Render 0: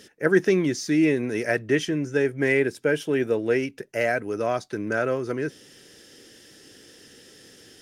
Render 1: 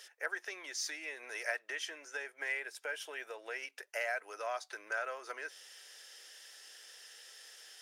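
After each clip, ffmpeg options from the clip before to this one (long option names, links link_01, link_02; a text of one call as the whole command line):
ffmpeg -i in.wav -af "acompressor=threshold=-26dB:ratio=6,highpass=frequency=700:width=0.5412,highpass=frequency=700:width=1.3066,volume=-2.5dB" out.wav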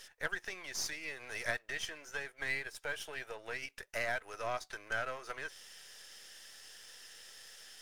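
ffmpeg -i in.wav -af "aeval=exprs='if(lt(val(0),0),0.447*val(0),val(0))':channel_layout=same,volume=3dB" out.wav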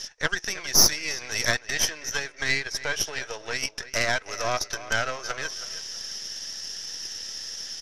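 ffmpeg -i in.wav -filter_complex "[0:a]lowpass=frequency=5700:width_type=q:width=7.5,asplit=2[link_01][link_02];[link_02]adelay=323,lowpass=frequency=3900:poles=1,volume=-13dB,asplit=2[link_03][link_04];[link_04]adelay=323,lowpass=frequency=3900:poles=1,volume=0.33,asplit=2[link_05][link_06];[link_06]adelay=323,lowpass=frequency=3900:poles=1,volume=0.33[link_07];[link_01][link_03][link_05][link_07]amix=inputs=4:normalize=0,aeval=exprs='0.251*(cos(1*acos(clip(val(0)/0.251,-1,1)))-cos(1*PI/2))+0.0398*(cos(6*acos(clip(val(0)/0.251,-1,1)))-cos(6*PI/2))':channel_layout=same,volume=7.5dB" out.wav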